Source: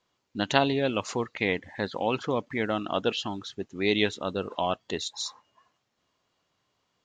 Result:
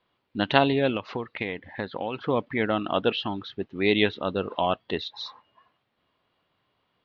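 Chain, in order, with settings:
inverse Chebyshev low-pass filter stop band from 7,200 Hz, stop band 40 dB
0:00.95–0:02.26: downward compressor 6 to 1, threshold −30 dBFS, peak gain reduction 9.5 dB
level +3 dB

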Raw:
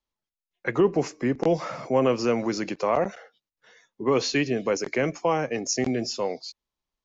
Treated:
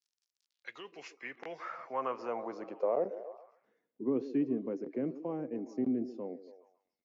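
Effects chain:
surface crackle 70 per second −51 dBFS
band-pass filter sweep 5,300 Hz → 270 Hz, 0:00.35–0:03.55
echo through a band-pass that steps 139 ms, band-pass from 360 Hz, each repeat 0.7 octaves, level −11 dB
level −3.5 dB

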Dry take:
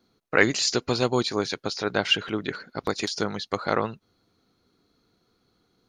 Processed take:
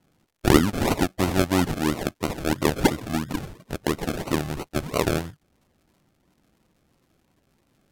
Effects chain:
sample-and-hold swept by an LFO 27×, swing 60% 4 Hz
surface crackle 170 per second −57 dBFS
change of speed 0.743×
level +2 dB

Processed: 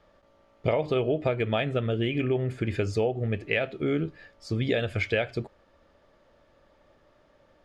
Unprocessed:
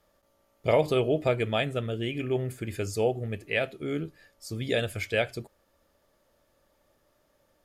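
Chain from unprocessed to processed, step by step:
low-pass filter 3,500 Hz 12 dB per octave
downward compressor 6 to 1, threshold −30 dBFS, peak gain reduction 12 dB
level +7.5 dB

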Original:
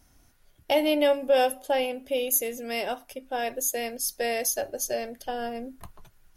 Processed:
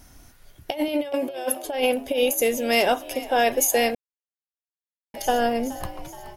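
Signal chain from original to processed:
0:00.88–0:01.65: Bessel high-pass filter 230 Hz
compressor whose output falls as the input rises −28 dBFS, ratio −0.5
echo with shifted repeats 423 ms, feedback 57%, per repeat +64 Hz, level −17 dB
0:03.95–0:05.14: silence
level +7.5 dB

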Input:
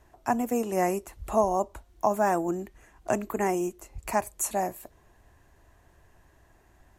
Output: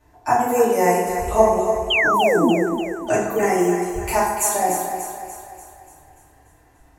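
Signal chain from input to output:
noise reduction from a noise print of the clip's start 9 dB
0:01.42–0:02.38: drawn EQ curve 350 Hz 0 dB, 1,300 Hz −27 dB, 7,400 Hz −3 dB
in parallel at −1 dB: downward compressor, threshold −35 dBFS, peak gain reduction 16.5 dB
on the sum: feedback delay network reverb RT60 1.1 s, low-frequency decay 0.9×, high-frequency decay 0.65×, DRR −9 dB
0:01.90–0:02.51: sound drawn into the spectrogram fall 210–3,300 Hz −17 dBFS
on a send: feedback echo with a high-pass in the loop 292 ms, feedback 52%, high-pass 250 Hz, level −8 dB
on the sum: level −1 dB

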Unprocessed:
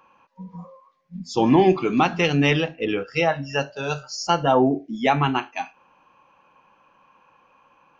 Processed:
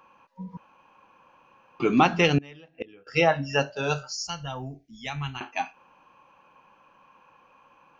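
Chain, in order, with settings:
0:00.57–0:01.80: fill with room tone
0:02.38–0:03.07: gate with flip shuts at −19 dBFS, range −27 dB
0:04.13–0:05.41: drawn EQ curve 100 Hz 0 dB, 330 Hz −26 dB, 6,100 Hz −1 dB

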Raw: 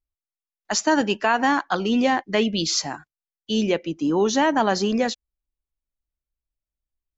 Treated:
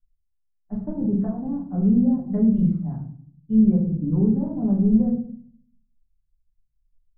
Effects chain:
treble cut that deepens with the level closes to 450 Hz, closed at −16.5 dBFS
drawn EQ curve 190 Hz 0 dB, 330 Hz −19 dB, 3,000 Hz −29 dB
low-pass that shuts in the quiet parts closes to 420 Hz, open at −18 dBFS
dynamic equaliser 1,100 Hz, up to +5 dB, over −54 dBFS, Q 0.95
rectangular room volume 67 cubic metres, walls mixed, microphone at 1.2 metres
level +4.5 dB

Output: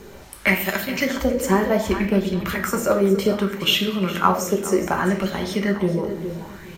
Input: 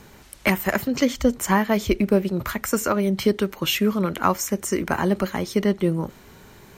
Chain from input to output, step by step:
0:00.54–0:00.96: spectral tilt +1.5 dB per octave
in parallel at +2 dB: downward compressor, threshold −33 dBFS, peak gain reduction 18.5 dB
on the sum: repeating echo 415 ms, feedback 35%, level −12 dB
on a send at −2.5 dB: convolution reverb RT60 0.80 s, pre-delay 5 ms
on the sum: auto-filter bell 0.65 Hz 400–3,700 Hz +10 dB
level −6 dB

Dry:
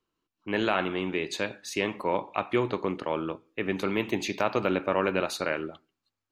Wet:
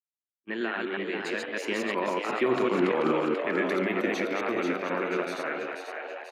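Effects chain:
delay that plays each chunk backwards 128 ms, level −1 dB
source passing by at 0:02.82, 17 m/s, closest 5.4 metres
high-pass filter 150 Hz 24 dB per octave
noise gate −50 dBFS, range −34 dB
parametric band 1,700 Hz +11 dB 0.96 octaves
in parallel at +2.5 dB: compressor whose output falls as the input rises −32 dBFS
on the sum: brickwall limiter −15.5 dBFS, peak gain reduction 6.5 dB
hollow resonant body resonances 240/350 Hz, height 9 dB, ringing for 50 ms
echo with shifted repeats 487 ms, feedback 53%, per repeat +100 Hz, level −5.5 dB
level −4 dB

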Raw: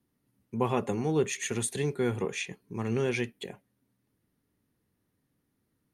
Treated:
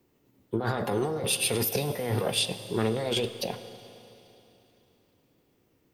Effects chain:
compressor whose output falls as the input rises −33 dBFS, ratio −1
formants moved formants +6 semitones
four-comb reverb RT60 3.2 s, combs from 32 ms, DRR 11.5 dB
level +5 dB

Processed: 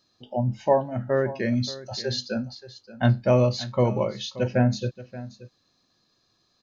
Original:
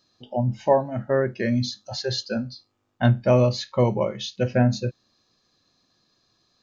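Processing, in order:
single-tap delay 578 ms −16.5 dB
level −1.5 dB

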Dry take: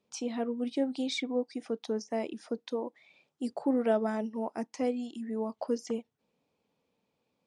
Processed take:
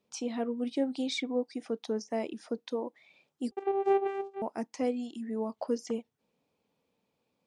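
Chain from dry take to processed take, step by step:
0:03.51–0:04.42: channel vocoder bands 4, saw 393 Hz

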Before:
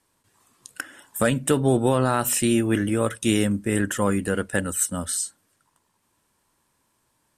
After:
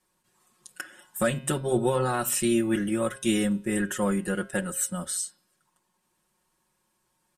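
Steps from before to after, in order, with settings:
comb filter 5.5 ms, depth 92%
hum removal 134.1 Hz, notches 39
level −6.5 dB

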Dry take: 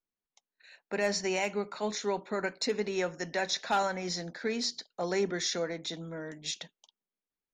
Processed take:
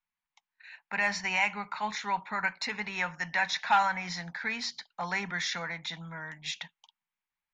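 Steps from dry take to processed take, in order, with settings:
drawn EQ curve 170 Hz 0 dB, 370 Hz −18 dB, 600 Hz −9 dB, 890 Hz +9 dB, 1,300 Hz +5 dB, 2,200 Hz +9 dB, 4,400 Hz −2 dB, 6,300 Hz −5 dB, 11,000 Hz −11 dB

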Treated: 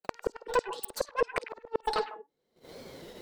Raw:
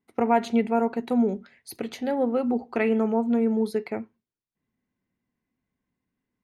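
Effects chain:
camcorder AGC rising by 20 dB per second
hum removal 141.2 Hz, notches 14
noise gate −53 dBFS, range −22 dB
in parallel at −3 dB: downward compressor 8 to 1, threshold −31 dBFS, peak gain reduction 15 dB
on the sum: harmonic generator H 5 −22 dB, 8 −25 dB, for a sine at −8 dBFS
flanger 1.6 Hz, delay 7.5 ms, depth 7.8 ms, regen +42%
gate with flip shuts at −17 dBFS, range −39 dB
on a send: echo through a band-pass that steps 101 ms, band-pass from 2,900 Hz, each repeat −1.4 octaves, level −5 dB
on the sum: wrong playback speed 7.5 ips tape played at 15 ips
wow of a warped record 33 1/3 rpm, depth 100 cents
level +1.5 dB

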